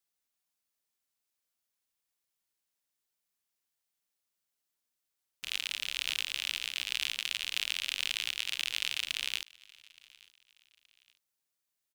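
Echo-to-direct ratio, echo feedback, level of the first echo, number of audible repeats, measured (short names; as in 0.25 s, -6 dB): -23.5 dB, 35%, -24.0 dB, 2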